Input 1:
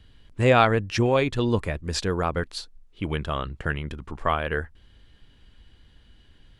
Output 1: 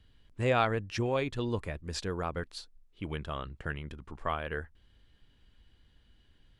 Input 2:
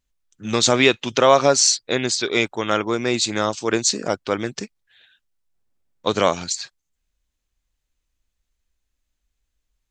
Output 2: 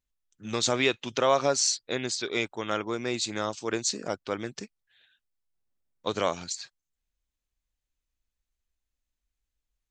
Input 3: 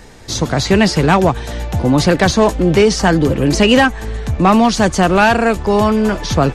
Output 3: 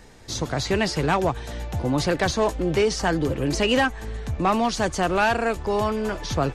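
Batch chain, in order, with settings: dynamic EQ 200 Hz, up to -6 dB, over -27 dBFS, Q 2.4; gain -9 dB

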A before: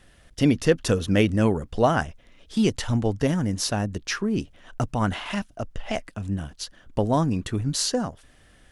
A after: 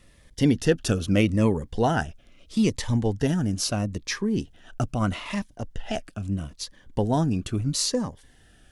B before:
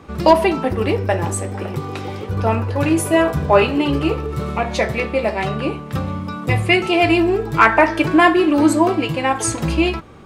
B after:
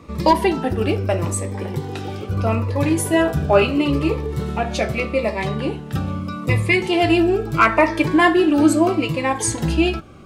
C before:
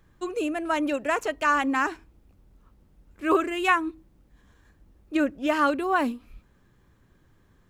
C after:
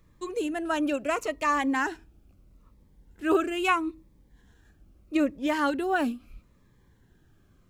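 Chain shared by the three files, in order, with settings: cascading phaser falling 0.77 Hz

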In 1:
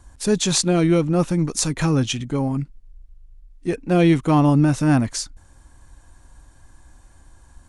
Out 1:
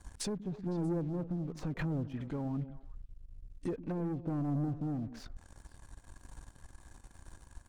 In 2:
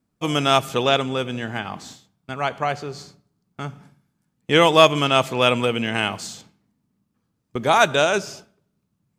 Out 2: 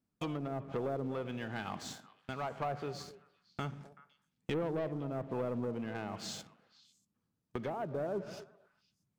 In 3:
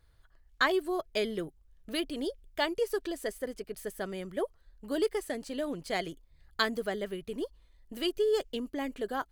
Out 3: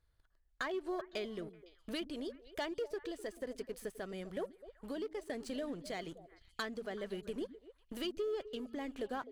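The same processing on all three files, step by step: treble ducked by the level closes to 490 Hz, closed at -16 dBFS; sample leveller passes 2; compressor 2.5:1, threshold -32 dBFS; tremolo 1.1 Hz, depth 28%; delay with a stepping band-pass 0.127 s, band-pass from 200 Hz, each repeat 1.4 oct, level -10 dB; gain -7 dB

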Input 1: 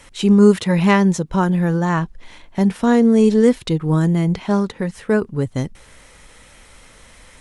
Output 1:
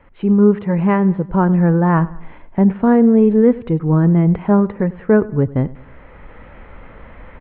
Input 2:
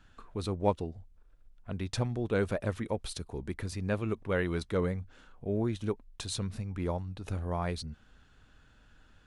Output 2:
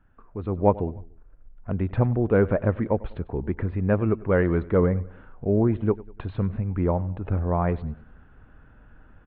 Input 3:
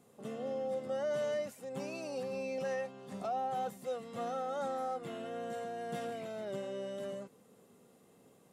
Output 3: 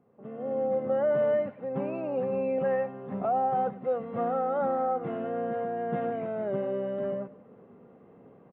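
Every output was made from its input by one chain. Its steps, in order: Gaussian blur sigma 4.6 samples; on a send: feedback echo 98 ms, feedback 44%, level -20 dB; on the sum: AGC gain up to 11 dB; gain -1 dB

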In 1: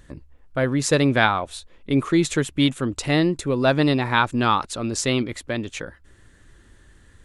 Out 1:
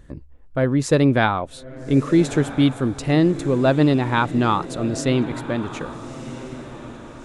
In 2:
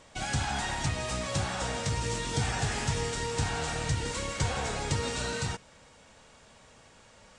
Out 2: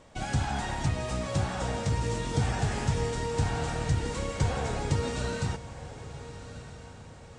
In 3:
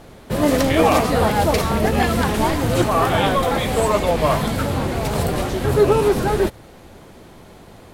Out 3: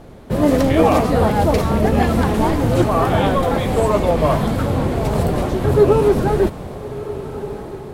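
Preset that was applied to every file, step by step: tilt shelf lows +4.5 dB, about 1100 Hz; on a send: diffused feedback echo 1.284 s, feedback 43%, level -13.5 dB; on the sum: gain -1 dB

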